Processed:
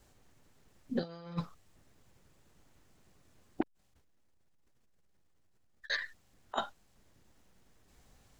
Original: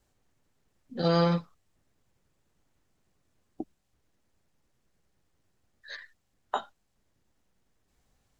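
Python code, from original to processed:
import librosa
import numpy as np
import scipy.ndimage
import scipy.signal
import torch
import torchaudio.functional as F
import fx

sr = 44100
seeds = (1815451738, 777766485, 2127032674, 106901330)

y = fx.over_compress(x, sr, threshold_db=-34.0, ratio=-0.5)
y = fx.transformer_sat(y, sr, knee_hz=1300.0, at=(3.61, 5.9))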